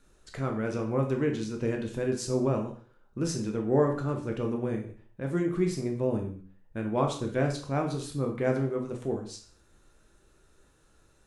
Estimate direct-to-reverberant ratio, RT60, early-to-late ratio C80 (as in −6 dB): 2.0 dB, non-exponential decay, 12.0 dB